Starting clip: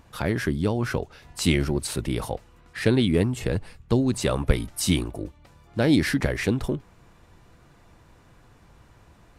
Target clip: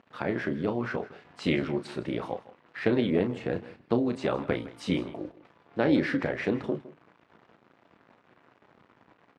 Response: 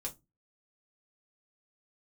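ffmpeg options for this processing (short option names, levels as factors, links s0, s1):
-filter_complex "[0:a]acrusher=bits=7:mix=0:aa=0.5,tremolo=f=230:d=0.621,highpass=200,lowpass=2500,asplit=2[s0][s1];[s1]adelay=33,volume=0.335[s2];[s0][s2]amix=inputs=2:normalize=0,aecho=1:1:160:0.133"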